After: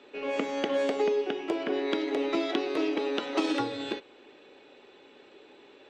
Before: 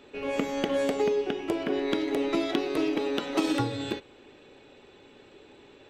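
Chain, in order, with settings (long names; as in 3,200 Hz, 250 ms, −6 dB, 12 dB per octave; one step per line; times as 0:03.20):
three-way crossover with the lows and the highs turned down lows −17 dB, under 230 Hz, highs −19 dB, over 7,000 Hz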